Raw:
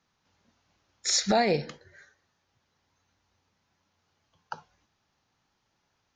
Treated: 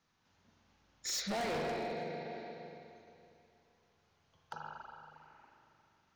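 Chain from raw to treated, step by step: spectral gain 5.14–5.51, 210–2900 Hz +10 dB; spring tank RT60 2.7 s, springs 39/45 ms, chirp 35 ms, DRR -0.5 dB; hard clip -26.5 dBFS, distortion -6 dB; limiter -31 dBFS, peak gain reduction 4.5 dB; gain -3 dB

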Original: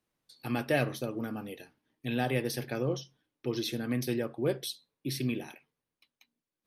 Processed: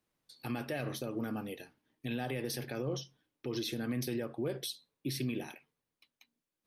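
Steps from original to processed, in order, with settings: limiter -27 dBFS, peak gain reduction 11.5 dB

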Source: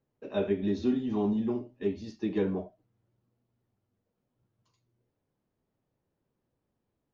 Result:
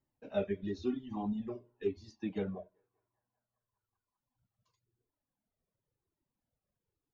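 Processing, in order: narrowing echo 0.195 s, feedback 82%, band-pass 1100 Hz, level -23.5 dB; reverb removal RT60 2 s; cascading flanger falling 0.97 Hz

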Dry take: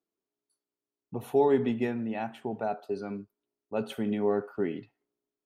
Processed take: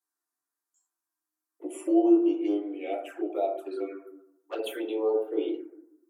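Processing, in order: speed glide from 64% -> 115%; envelope phaser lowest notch 510 Hz, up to 1900 Hz, full sweep at -23.5 dBFS; compressor, threshold -28 dBFS, peak gain reduction 9 dB; bell 550 Hz -2.5 dB 1.5 oct; notch 2100 Hz, Q 10; reverb RT60 0.80 s, pre-delay 5 ms, DRR -3 dB; envelope flanger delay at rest 11.9 ms, full sweep at -28.5 dBFS; steep high-pass 320 Hz 72 dB/oct; high shelf 7200 Hz +9 dB; gain +5.5 dB

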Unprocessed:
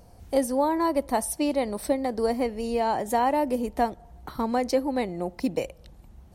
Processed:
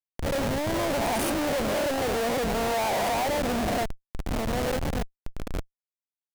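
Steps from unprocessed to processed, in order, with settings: spectral swells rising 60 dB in 1.26 s; Doppler pass-by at 2.42, 6 m/s, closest 4 m; bell 320 Hz -3 dB 1.2 oct; on a send: swung echo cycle 1 s, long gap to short 3:1, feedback 53%, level -22 dB; on the sum: Schmitt trigger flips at -31.5 dBFS; dynamic EQ 670 Hz, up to +6 dB, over -45 dBFS, Q 2.2; soft clip -29 dBFS, distortion -15 dB; gain +5 dB

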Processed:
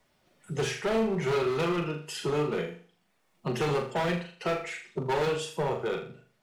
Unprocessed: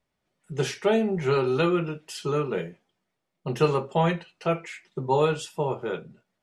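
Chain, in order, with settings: bin magnitudes rounded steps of 15 dB; low shelf 200 Hz -4 dB; hard clip -25 dBFS, distortion -8 dB; flutter echo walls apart 6.9 m, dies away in 0.38 s; three-band squash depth 40%

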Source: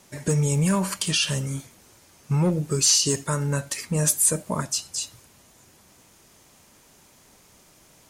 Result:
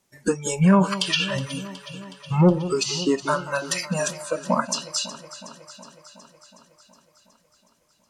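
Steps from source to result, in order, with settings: spectral noise reduction 23 dB; treble ducked by the level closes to 2000 Hz, closed at -21 dBFS; on a send: echo with dull and thin repeats by turns 0.184 s, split 1300 Hz, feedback 81%, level -13.5 dB; on the sum: gain +7.5 dB

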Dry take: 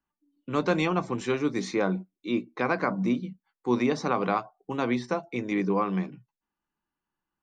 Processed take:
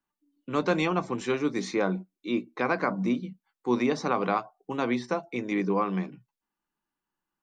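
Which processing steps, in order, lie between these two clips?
bell 72 Hz -14.5 dB 0.87 oct

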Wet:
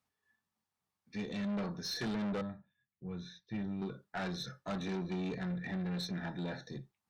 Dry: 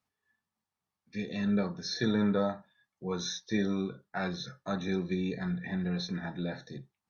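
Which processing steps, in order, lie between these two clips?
2.41–3.82 EQ curve 130 Hz 0 dB, 890 Hz -18 dB, 2500 Hz -7 dB, 7000 Hz -28 dB; tube stage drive 33 dB, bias 0.2

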